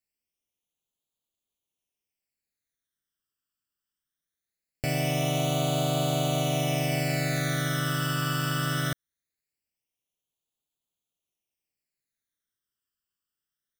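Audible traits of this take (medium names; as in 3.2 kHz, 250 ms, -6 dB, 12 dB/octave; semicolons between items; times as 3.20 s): phasing stages 12, 0.21 Hz, lowest notch 700–1800 Hz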